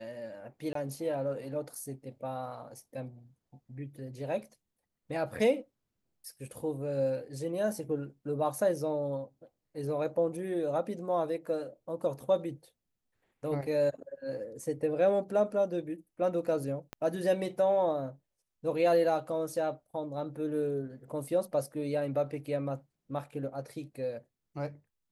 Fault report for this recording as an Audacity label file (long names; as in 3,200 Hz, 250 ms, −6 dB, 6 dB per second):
0.730000	0.750000	drop-out 23 ms
16.930000	16.930000	click −24 dBFS